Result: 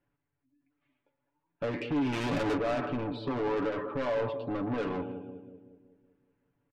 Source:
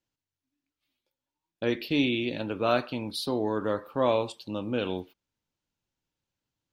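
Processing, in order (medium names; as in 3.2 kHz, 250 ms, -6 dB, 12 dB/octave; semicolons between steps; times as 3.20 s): peak limiter -23 dBFS, peak gain reduction 11.5 dB; spectral gate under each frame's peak -25 dB strong; 2.13–2.57 s: waveshaping leveller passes 3; low-pass 2.1 kHz 24 dB/octave; two-band feedback delay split 540 Hz, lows 188 ms, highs 111 ms, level -14.5 dB; saturation -37.5 dBFS, distortion -6 dB; comb 7 ms, depth 68%; trim +8 dB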